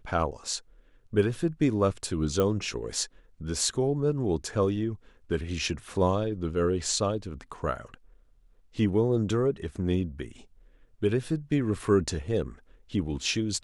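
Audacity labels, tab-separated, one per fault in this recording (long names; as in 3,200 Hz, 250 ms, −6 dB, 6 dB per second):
2.400000	2.400000	click −14 dBFS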